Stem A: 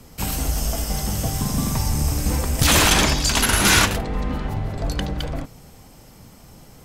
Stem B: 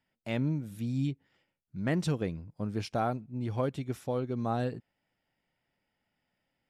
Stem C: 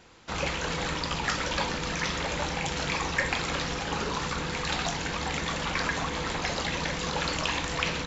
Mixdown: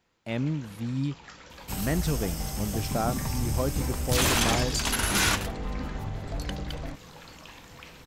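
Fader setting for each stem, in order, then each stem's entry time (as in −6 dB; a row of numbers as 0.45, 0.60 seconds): −8.5, +1.5, −18.5 decibels; 1.50, 0.00, 0.00 seconds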